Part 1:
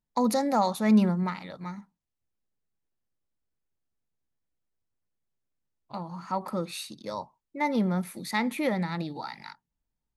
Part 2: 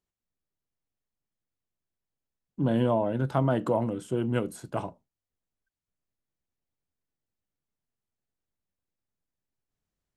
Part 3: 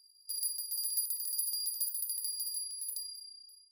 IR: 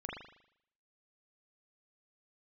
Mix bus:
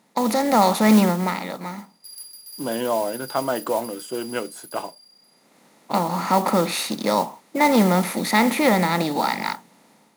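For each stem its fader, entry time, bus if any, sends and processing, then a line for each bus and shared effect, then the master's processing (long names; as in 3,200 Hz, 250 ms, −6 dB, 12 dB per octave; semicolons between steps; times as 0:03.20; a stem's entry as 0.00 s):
+1.0 dB, 0.00 s, no send, compressor on every frequency bin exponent 0.6; automatic ducking −18 dB, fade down 1.65 s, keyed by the second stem
−1.0 dB, 0.00 s, no send, de-essing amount 95%; high-pass filter 580 Hz 6 dB per octave
−7.0 dB, 1.75 s, no send, high-shelf EQ 7,000 Hz −6.5 dB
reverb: not used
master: high-pass filter 200 Hz 12 dB per octave; automatic gain control gain up to 7.5 dB; noise that follows the level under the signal 18 dB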